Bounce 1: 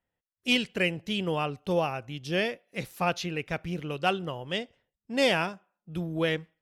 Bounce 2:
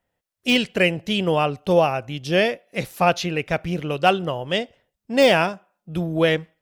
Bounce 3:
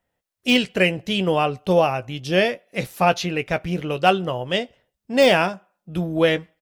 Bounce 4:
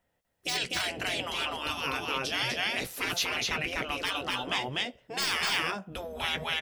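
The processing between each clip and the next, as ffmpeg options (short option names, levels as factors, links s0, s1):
-af "deesser=0.65,equalizer=f=630:w=2.3:g=4.5,volume=2.37"
-filter_complex "[0:a]asplit=2[s0][s1];[s1]adelay=16,volume=0.251[s2];[s0][s2]amix=inputs=2:normalize=0"
-af "aecho=1:1:248:0.708,afftfilt=real='re*lt(hypot(re,im),0.178)':imag='im*lt(hypot(re,im),0.178)':win_size=1024:overlap=0.75"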